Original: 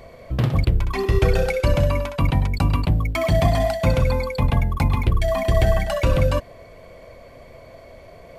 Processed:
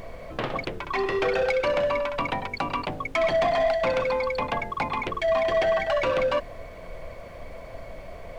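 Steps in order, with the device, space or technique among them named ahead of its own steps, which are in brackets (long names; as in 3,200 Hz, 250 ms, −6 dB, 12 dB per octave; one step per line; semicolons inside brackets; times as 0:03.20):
aircraft cabin announcement (band-pass filter 470–3,200 Hz; soft clipping −20.5 dBFS, distortion −17 dB; brown noise bed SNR 14 dB)
level +3.5 dB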